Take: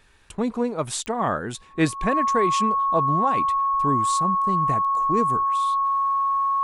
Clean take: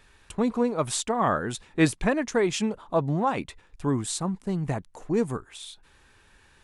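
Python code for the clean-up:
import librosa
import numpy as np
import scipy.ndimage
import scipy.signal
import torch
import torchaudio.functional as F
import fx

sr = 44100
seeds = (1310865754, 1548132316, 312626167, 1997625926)

y = fx.fix_declick_ar(x, sr, threshold=10.0)
y = fx.notch(y, sr, hz=1100.0, q=30.0)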